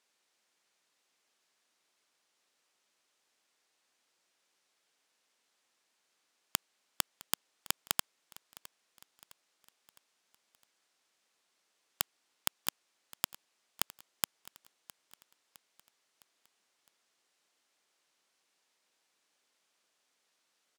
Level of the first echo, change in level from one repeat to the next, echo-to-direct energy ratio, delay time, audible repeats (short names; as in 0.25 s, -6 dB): -20.0 dB, -6.0 dB, -19.0 dB, 0.66 s, 3